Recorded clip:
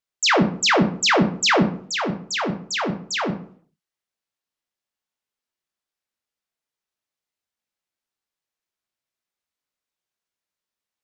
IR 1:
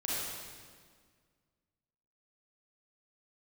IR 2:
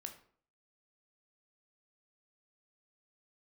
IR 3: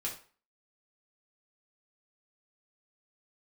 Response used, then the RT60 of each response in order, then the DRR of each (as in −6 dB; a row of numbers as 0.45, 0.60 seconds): 2; 1.8, 0.55, 0.40 seconds; −7.5, 4.5, −4.0 decibels